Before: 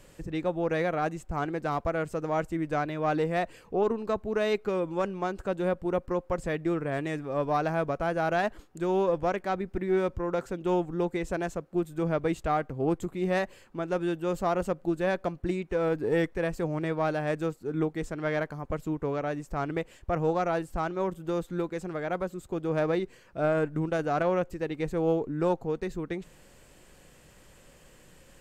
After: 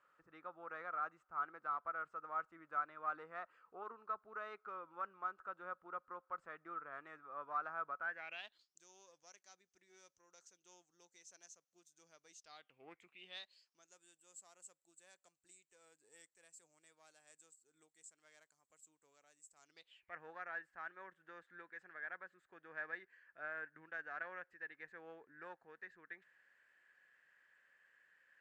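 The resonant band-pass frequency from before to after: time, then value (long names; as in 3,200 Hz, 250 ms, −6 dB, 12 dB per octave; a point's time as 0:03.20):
resonant band-pass, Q 9.2
0:07.97 1,300 Hz
0:08.78 6,100 Hz
0:12.39 6,100 Hz
0:12.88 1,900 Hz
0:13.99 7,700 Hz
0:19.59 7,700 Hz
0:20.16 1,700 Hz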